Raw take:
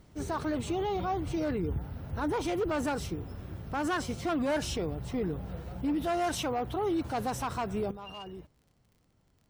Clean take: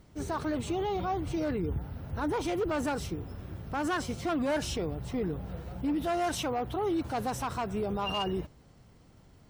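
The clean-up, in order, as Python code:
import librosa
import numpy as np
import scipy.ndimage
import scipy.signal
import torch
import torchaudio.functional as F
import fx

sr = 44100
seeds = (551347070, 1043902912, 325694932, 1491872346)

y = fx.fix_declick_ar(x, sr, threshold=6.5)
y = fx.fix_level(y, sr, at_s=7.91, step_db=12.0)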